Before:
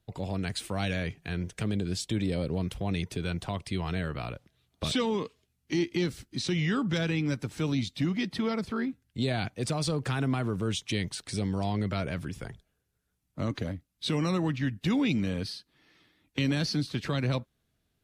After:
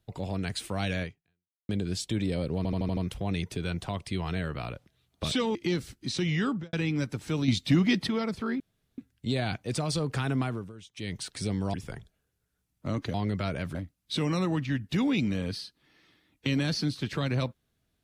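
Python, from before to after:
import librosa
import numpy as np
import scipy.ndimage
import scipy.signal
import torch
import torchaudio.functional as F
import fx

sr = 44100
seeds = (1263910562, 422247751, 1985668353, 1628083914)

y = fx.studio_fade_out(x, sr, start_s=6.78, length_s=0.25)
y = fx.edit(y, sr, fx.fade_out_span(start_s=1.03, length_s=0.66, curve='exp'),
    fx.stutter(start_s=2.57, slice_s=0.08, count=6),
    fx.cut(start_s=5.15, length_s=0.7),
    fx.clip_gain(start_s=7.78, length_s=0.59, db=6.0),
    fx.insert_room_tone(at_s=8.9, length_s=0.38),
    fx.fade_down_up(start_s=10.35, length_s=0.79, db=-17.5, fade_s=0.3),
    fx.move(start_s=11.66, length_s=0.61, to_s=13.67), tone=tone)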